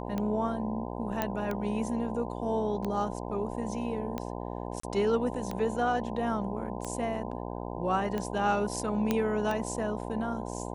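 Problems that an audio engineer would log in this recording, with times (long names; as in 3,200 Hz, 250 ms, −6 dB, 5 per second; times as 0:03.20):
mains buzz 60 Hz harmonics 17 −37 dBFS
scratch tick 45 rpm −20 dBFS
0:01.22: click −14 dBFS
0:04.80–0:04.83: drop-out 34 ms
0:09.11: click −13 dBFS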